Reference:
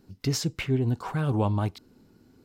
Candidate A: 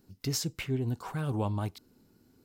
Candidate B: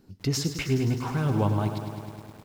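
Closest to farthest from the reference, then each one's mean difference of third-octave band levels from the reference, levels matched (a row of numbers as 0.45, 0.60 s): A, B; 1.5, 8.5 dB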